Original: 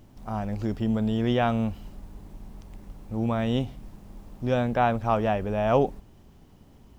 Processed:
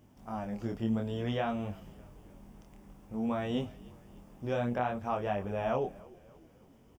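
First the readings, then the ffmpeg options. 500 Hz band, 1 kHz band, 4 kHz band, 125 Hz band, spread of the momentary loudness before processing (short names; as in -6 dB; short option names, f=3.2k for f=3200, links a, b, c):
-7.5 dB, -8.5 dB, -7.5 dB, -9.5 dB, 22 LU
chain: -filter_complex "[0:a]highpass=f=110:p=1,equalizer=f=4.1k:w=6.7:g=-11.5,alimiter=limit=-15dB:level=0:latency=1:release=255,flanger=delay=20:depth=6.4:speed=0.56,asplit=5[a][b][c][d][e];[b]adelay=298,afreqshift=-48,volume=-22.5dB[f];[c]adelay=596,afreqshift=-96,volume=-28dB[g];[d]adelay=894,afreqshift=-144,volume=-33.5dB[h];[e]adelay=1192,afreqshift=-192,volume=-39dB[i];[a][f][g][h][i]amix=inputs=5:normalize=0,volume=-2.5dB"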